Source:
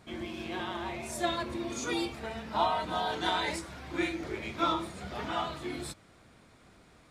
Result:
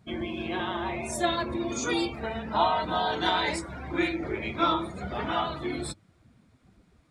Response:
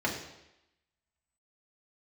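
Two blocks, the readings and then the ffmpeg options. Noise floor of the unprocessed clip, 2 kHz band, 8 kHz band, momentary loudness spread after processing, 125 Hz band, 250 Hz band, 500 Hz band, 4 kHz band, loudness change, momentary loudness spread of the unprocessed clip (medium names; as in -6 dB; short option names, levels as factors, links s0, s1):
-59 dBFS, +4.5 dB, +4.0 dB, 9 LU, +5.5 dB, +5.0 dB, +5.0 dB, +4.0 dB, +4.5 dB, 9 LU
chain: -filter_complex "[0:a]afftdn=nr=17:nf=-47,asplit=2[s0][s1];[s1]acompressor=threshold=0.01:ratio=6,volume=0.708[s2];[s0][s2]amix=inputs=2:normalize=0,volume=1.41"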